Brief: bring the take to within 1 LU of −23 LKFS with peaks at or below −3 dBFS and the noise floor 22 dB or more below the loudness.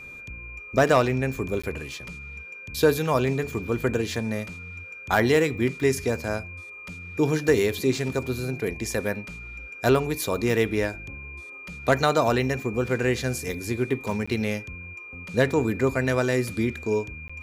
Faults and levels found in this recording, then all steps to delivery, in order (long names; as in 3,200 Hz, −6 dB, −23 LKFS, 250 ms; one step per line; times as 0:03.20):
number of dropouts 3; longest dropout 15 ms; interfering tone 2,400 Hz; level of the tone −39 dBFS; integrated loudness −25.0 LKFS; sample peak −8.5 dBFS; target loudness −23.0 LKFS
→ repair the gap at 0:01.62/0:14.26/0:17.28, 15 ms
notch filter 2,400 Hz, Q 30
level +2 dB